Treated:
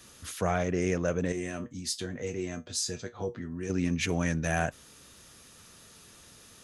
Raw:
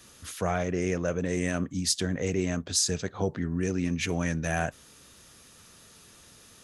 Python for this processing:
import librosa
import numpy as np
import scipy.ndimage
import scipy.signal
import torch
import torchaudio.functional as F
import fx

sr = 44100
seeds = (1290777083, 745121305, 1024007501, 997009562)

y = fx.comb_fb(x, sr, f0_hz=120.0, decay_s=0.17, harmonics='all', damping=0.0, mix_pct=80, at=(1.32, 3.7))